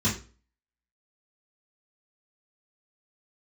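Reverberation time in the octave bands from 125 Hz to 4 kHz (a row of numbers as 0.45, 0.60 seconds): 0.40, 0.40, 0.40, 0.35, 0.35, 0.30 seconds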